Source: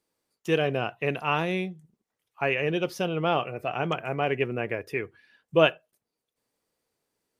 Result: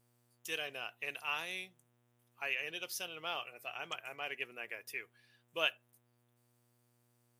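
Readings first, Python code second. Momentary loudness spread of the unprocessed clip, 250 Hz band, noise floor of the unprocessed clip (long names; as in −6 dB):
9 LU, −26.0 dB, below −85 dBFS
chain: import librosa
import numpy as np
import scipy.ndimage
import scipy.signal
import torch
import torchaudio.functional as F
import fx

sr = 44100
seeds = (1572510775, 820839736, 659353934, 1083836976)

y = np.diff(x, prepend=0.0)
y = fx.dmg_buzz(y, sr, base_hz=120.0, harmonics=32, level_db=-77.0, tilt_db=-6, odd_only=False)
y = y * 10.0 ** (2.0 / 20.0)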